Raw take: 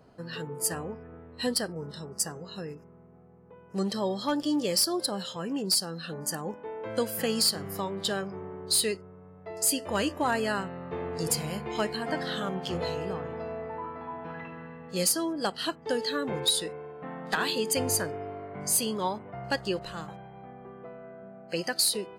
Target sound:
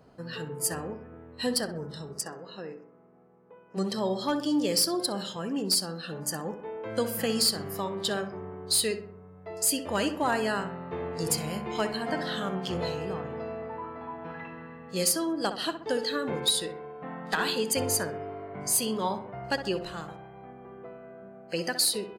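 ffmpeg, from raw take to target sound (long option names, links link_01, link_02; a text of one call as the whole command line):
ffmpeg -i in.wav -filter_complex "[0:a]asplit=3[link_01][link_02][link_03];[link_01]afade=type=out:start_time=2.2:duration=0.02[link_04];[link_02]highpass=250,lowpass=3800,afade=type=in:start_time=2.2:duration=0.02,afade=type=out:start_time=3.76:duration=0.02[link_05];[link_03]afade=type=in:start_time=3.76:duration=0.02[link_06];[link_04][link_05][link_06]amix=inputs=3:normalize=0,asplit=2[link_07][link_08];[link_08]adelay=64,lowpass=frequency=1800:poles=1,volume=-9dB,asplit=2[link_09][link_10];[link_10]adelay=64,lowpass=frequency=1800:poles=1,volume=0.52,asplit=2[link_11][link_12];[link_12]adelay=64,lowpass=frequency=1800:poles=1,volume=0.52,asplit=2[link_13][link_14];[link_14]adelay=64,lowpass=frequency=1800:poles=1,volume=0.52,asplit=2[link_15][link_16];[link_16]adelay=64,lowpass=frequency=1800:poles=1,volume=0.52,asplit=2[link_17][link_18];[link_18]adelay=64,lowpass=frequency=1800:poles=1,volume=0.52[link_19];[link_07][link_09][link_11][link_13][link_15][link_17][link_19]amix=inputs=7:normalize=0" out.wav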